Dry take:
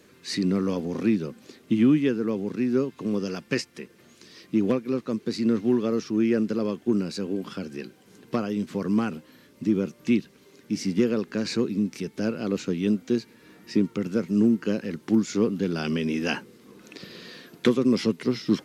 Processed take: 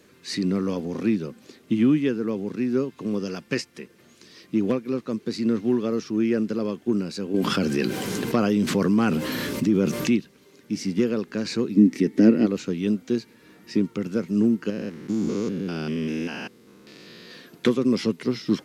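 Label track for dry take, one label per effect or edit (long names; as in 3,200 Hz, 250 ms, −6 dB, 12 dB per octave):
7.340000	10.160000	envelope flattener amount 70%
11.760000	12.450000	hollow resonant body resonances 280/1,900 Hz, height 15 dB → 18 dB, ringing for 25 ms
14.700000	17.310000	spectrum averaged block by block every 200 ms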